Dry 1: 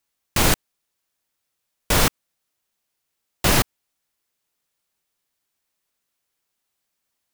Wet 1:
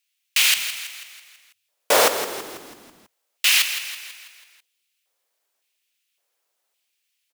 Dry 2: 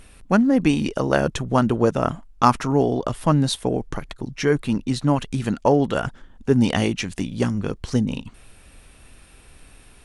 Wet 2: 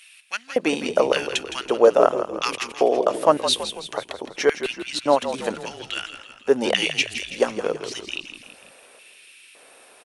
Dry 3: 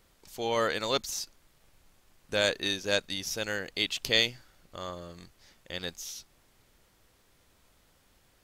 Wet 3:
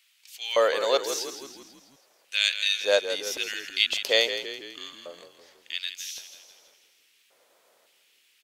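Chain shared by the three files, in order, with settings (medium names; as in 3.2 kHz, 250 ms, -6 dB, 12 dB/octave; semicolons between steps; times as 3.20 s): hum notches 60/120/180 Hz; LFO high-pass square 0.89 Hz 530–2600 Hz; frequency-shifting echo 164 ms, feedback 52%, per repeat -45 Hz, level -10 dB; trim +1.5 dB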